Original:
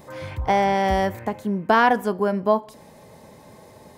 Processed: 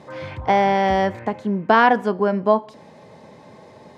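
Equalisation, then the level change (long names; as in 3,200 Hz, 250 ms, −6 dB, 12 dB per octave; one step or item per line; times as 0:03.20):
band-pass filter 110–4,700 Hz
+2.5 dB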